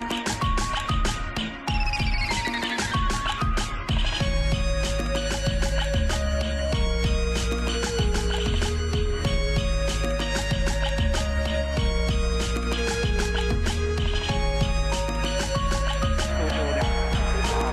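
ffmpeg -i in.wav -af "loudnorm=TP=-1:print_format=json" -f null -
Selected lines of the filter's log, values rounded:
"input_i" : "-25.6",
"input_tp" : "-10.5",
"input_lra" : "0.6",
"input_thresh" : "-35.6",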